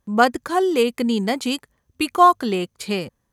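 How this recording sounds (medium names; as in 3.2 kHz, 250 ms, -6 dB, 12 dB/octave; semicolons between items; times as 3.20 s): noise floor -73 dBFS; spectral tilt -3.0 dB/octave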